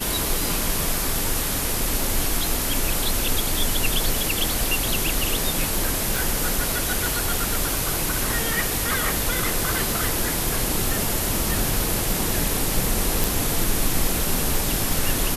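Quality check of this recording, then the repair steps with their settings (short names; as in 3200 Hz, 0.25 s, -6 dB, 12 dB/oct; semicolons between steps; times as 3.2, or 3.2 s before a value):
6.16 pop
13.24 pop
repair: de-click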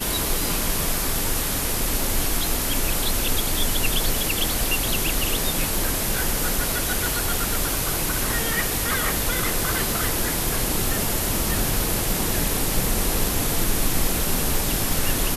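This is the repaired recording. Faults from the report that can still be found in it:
none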